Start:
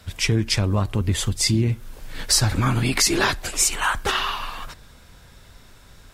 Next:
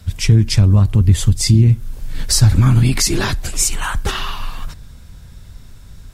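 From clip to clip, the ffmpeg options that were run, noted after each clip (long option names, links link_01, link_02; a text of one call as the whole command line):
ffmpeg -i in.wav -af "bass=frequency=250:gain=14,treble=frequency=4000:gain=5,volume=-2dB" out.wav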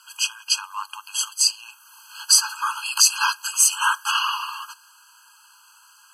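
ffmpeg -i in.wav -af "afftfilt=real='re*eq(mod(floor(b*sr/1024/830),2),1)':imag='im*eq(mod(floor(b*sr/1024/830),2),1)':win_size=1024:overlap=0.75,volume=4.5dB" out.wav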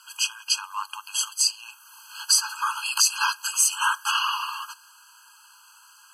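ffmpeg -i in.wav -af "acompressor=threshold=-23dB:ratio=1.5" out.wav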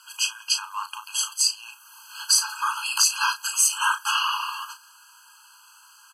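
ffmpeg -i in.wav -filter_complex "[0:a]asplit=2[link_01][link_02];[link_02]adelay=35,volume=-8.5dB[link_03];[link_01][link_03]amix=inputs=2:normalize=0" out.wav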